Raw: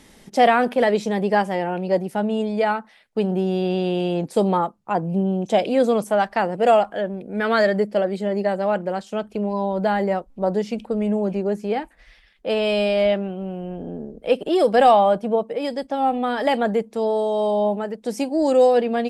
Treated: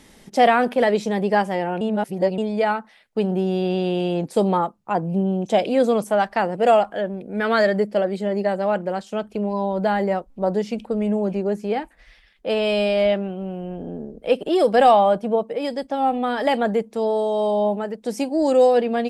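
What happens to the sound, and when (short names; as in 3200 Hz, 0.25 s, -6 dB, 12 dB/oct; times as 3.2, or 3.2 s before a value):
1.81–2.38 reverse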